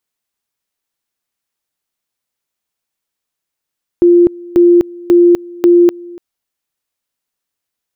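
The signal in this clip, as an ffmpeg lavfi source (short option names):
-f lavfi -i "aevalsrc='pow(10,(-3.5-23.5*gte(mod(t,0.54),0.25))/20)*sin(2*PI*348*t)':d=2.16:s=44100"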